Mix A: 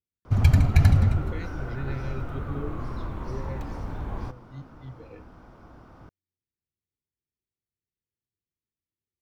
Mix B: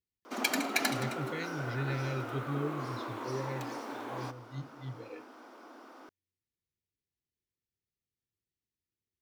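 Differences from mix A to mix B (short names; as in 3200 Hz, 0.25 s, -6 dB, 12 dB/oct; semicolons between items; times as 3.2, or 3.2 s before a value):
background: add steep high-pass 250 Hz 48 dB/oct; master: add high shelf 2400 Hz +8 dB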